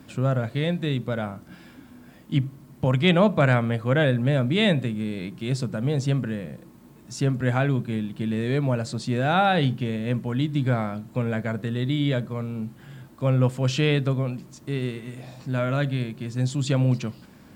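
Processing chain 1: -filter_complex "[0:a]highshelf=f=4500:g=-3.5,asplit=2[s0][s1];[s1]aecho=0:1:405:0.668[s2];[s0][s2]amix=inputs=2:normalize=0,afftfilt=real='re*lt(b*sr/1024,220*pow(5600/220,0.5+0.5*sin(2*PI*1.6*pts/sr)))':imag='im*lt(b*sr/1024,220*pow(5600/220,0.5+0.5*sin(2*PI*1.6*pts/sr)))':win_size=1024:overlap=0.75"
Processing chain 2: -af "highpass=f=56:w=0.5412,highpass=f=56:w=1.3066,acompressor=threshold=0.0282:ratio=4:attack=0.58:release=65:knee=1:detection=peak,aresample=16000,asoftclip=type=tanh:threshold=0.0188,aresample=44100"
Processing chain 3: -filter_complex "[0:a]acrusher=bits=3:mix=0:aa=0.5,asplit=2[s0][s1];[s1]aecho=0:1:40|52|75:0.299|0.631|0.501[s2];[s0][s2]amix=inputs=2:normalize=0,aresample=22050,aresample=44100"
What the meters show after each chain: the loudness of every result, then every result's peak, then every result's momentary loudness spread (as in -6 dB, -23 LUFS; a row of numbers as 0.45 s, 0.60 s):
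-24.5 LUFS, -40.0 LUFS, -22.0 LUFS; -7.5 dBFS, -30.5 dBFS, -3.5 dBFS; 10 LU, 5 LU, 11 LU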